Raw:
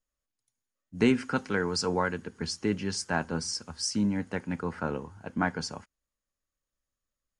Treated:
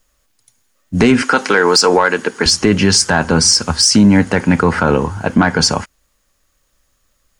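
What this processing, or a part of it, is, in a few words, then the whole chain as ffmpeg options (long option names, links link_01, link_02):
mastering chain: -filter_complex "[0:a]asettb=1/sr,asplit=3[link_01][link_02][link_03];[link_01]atrim=end=1.224[link_04];[link_02]atrim=start=1.22:end=2.46,asetpts=PTS-STARTPTS,afade=type=in:duration=0.004:curve=qsin,afade=type=out:start_time=1.236:duration=0.004:curve=qsin,highpass=350[link_05];[link_03]atrim=start=2.456[link_06];[link_04][link_05]acrossfade=duration=0.004:curve1=hsin:curve2=qsin[link_07];[link_07][link_06]acrossfade=duration=0.004:curve1=qsin:curve2=hsin,equalizer=frequency=230:width_type=o:width=2.4:gain=-2.5,acompressor=threshold=-31dB:ratio=2,asoftclip=type=tanh:threshold=-21.5dB,alimiter=level_in=27dB:limit=-1dB:release=50:level=0:latency=1,volume=-1dB"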